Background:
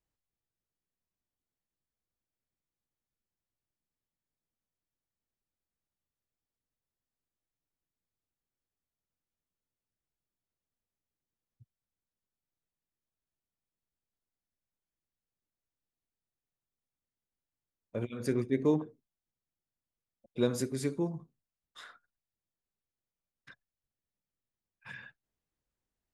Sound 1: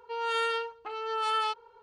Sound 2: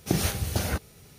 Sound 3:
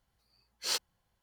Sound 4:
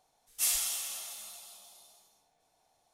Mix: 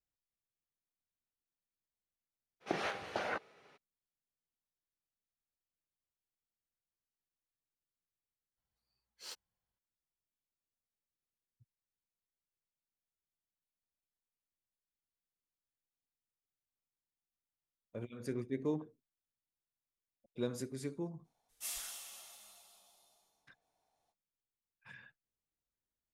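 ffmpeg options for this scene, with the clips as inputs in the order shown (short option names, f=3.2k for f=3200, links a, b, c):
-filter_complex "[0:a]volume=-8.5dB[a];[2:a]highpass=550,lowpass=2.1k[b];[4:a]highshelf=f=3.3k:g=-5.5[c];[a]asplit=2[d][e];[d]atrim=end=8.574[f];[3:a]atrim=end=1.22,asetpts=PTS-STARTPTS,volume=-16.5dB[g];[e]atrim=start=9.786[h];[b]atrim=end=1.18,asetpts=PTS-STARTPTS,volume=-1dB,afade=t=in:d=0.02,afade=t=out:st=1.16:d=0.02,adelay=2600[i];[c]atrim=end=2.93,asetpts=PTS-STARTPTS,volume=-8.5dB,afade=t=in:d=0.05,afade=t=out:st=2.88:d=0.05,adelay=21220[j];[f][g]acrossfade=d=0.004:c1=hsin:c2=hsin[k];[k][h]acrossfade=d=0.004:c1=hsin:c2=hsin[l];[l][i][j]amix=inputs=3:normalize=0"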